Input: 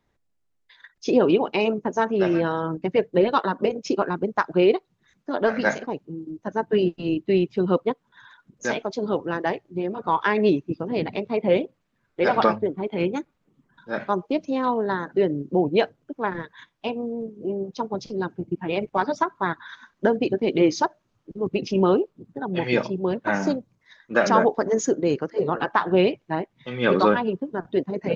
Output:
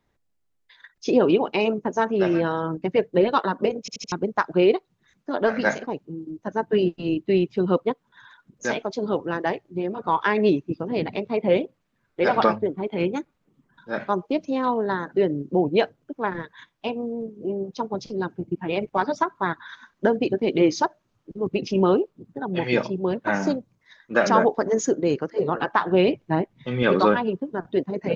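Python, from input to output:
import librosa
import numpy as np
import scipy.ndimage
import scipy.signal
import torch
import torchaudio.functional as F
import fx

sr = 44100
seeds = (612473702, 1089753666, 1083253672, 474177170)

y = fx.low_shelf(x, sr, hz=410.0, db=8.0, at=(26.08, 26.83))
y = fx.edit(y, sr, fx.stutter_over(start_s=3.8, slice_s=0.08, count=4), tone=tone)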